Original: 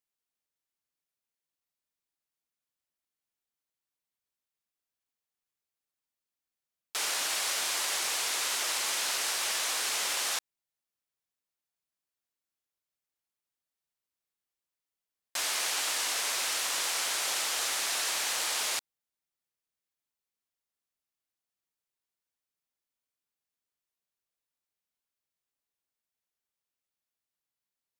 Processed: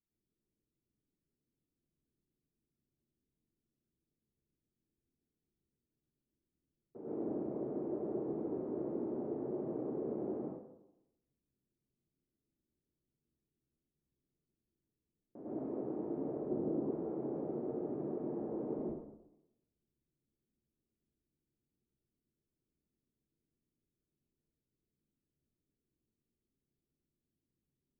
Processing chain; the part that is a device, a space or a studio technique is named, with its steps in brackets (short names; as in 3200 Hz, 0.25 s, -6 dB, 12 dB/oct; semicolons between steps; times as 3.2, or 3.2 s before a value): next room (LPF 340 Hz 24 dB/oct; reverb RT60 0.85 s, pre-delay 95 ms, DRR -8.5 dB); 16.49–16.91 tilt shelf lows +5 dB; gain +9.5 dB